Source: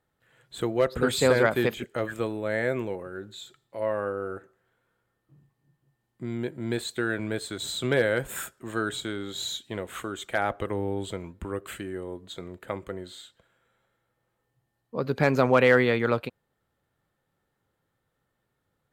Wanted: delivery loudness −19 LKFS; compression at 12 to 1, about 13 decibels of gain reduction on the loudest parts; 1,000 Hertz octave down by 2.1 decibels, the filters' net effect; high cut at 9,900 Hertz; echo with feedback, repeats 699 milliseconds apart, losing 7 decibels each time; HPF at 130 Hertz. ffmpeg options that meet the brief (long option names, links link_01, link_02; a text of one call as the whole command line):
ffmpeg -i in.wav -af "highpass=130,lowpass=9900,equalizer=frequency=1000:width_type=o:gain=-3,acompressor=threshold=-29dB:ratio=12,aecho=1:1:699|1398|2097|2796|3495:0.447|0.201|0.0905|0.0407|0.0183,volume=16.5dB" out.wav